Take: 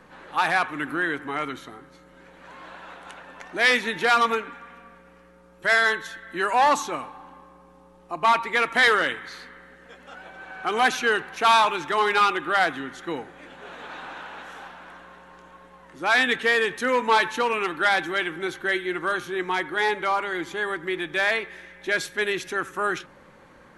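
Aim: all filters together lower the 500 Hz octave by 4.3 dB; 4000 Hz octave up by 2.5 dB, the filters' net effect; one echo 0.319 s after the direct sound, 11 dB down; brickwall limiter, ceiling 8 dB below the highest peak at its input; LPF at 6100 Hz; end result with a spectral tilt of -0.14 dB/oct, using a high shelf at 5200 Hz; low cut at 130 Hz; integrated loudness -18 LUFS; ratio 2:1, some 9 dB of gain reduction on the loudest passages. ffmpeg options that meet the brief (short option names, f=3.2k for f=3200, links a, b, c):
-af "highpass=130,lowpass=6.1k,equalizer=f=500:t=o:g=-5.5,equalizer=f=4k:t=o:g=6.5,highshelf=f=5.2k:g=-7.5,acompressor=threshold=-32dB:ratio=2,alimiter=limit=-22dB:level=0:latency=1,aecho=1:1:319:0.282,volume=15dB"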